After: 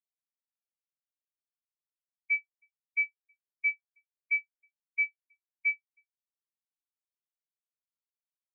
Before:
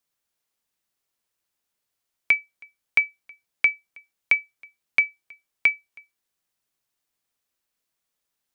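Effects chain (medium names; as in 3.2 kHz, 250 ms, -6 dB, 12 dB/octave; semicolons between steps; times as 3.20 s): companding laws mixed up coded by mu; reverse; compression 6:1, threshold -27 dBFS, peak gain reduction 13 dB; reverse; spectral contrast expander 2.5:1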